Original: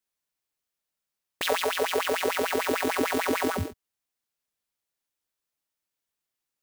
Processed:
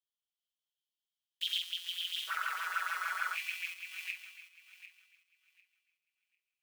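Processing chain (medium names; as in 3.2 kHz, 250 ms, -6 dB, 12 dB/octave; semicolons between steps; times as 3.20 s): backward echo that repeats 374 ms, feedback 45%, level 0 dB; ladder high-pass 3 kHz, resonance 80%, from 2.27 s 1.3 kHz, from 3.34 s 2.4 kHz; flange 0.67 Hz, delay 9.3 ms, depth 2.1 ms, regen -46%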